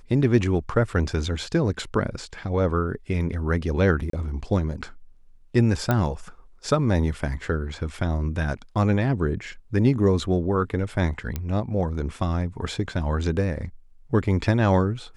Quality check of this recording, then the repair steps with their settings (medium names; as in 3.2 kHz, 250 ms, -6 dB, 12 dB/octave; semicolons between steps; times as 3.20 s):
4.10–4.13 s: dropout 33 ms
5.91 s: pop -9 dBFS
11.36 s: pop -14 dBFS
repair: de-click; interpolate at 4.10 s, 33 ms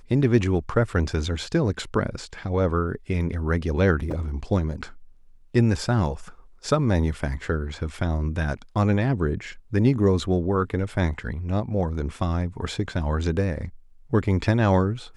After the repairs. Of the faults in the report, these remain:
nothing left